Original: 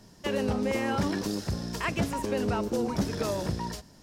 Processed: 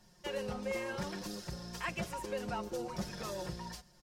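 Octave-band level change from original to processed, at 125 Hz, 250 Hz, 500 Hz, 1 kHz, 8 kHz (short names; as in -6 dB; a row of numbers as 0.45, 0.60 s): -12.0, -13.0, -9.0, -8.0, -7.0 dB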